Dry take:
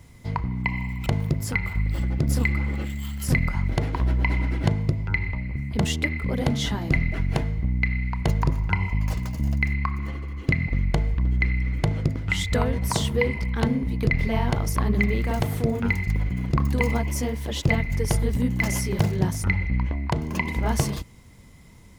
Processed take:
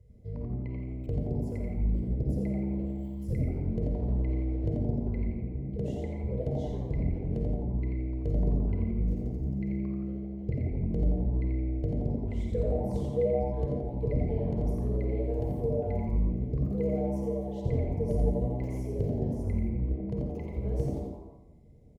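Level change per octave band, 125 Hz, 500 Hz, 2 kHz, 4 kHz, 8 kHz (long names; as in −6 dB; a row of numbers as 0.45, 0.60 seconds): −6.5 dB, −1.5 dB, −28.5 dB, below −25 dB, below −25 dB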